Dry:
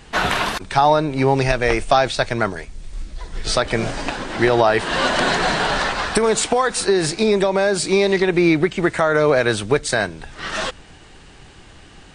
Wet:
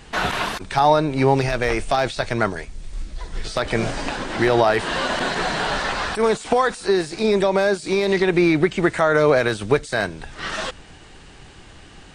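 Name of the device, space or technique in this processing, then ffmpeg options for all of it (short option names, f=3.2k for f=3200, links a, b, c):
de-esser from a sidechain: -filter_complex "[0:a]asplit=2[a][b];[b]highpass=6.7k,apad=whole_len=535396[c];[a][c]sidechaincompress=threshold=-36dB:ratio=10:attack=0.69:release=24"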